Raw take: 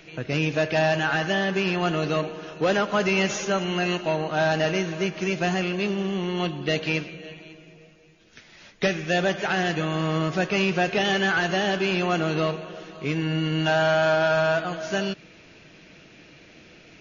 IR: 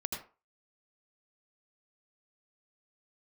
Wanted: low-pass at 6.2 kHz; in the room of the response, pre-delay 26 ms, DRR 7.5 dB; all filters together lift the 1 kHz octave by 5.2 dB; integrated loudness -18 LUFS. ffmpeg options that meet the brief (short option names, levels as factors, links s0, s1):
-filter_complex "[0:a]lowpass=6200,equalizer=f=1000:t=o:g=7.5,asplit=2[s0][s1];[1:a]atrim=start_sample=2205,adelay=26[s2];[s1][s2]afir=irnorm=-1:irlink=0,volume=0.335[s3];[s0][s3]amix=inputs=2:normalize=0,volume=1.5"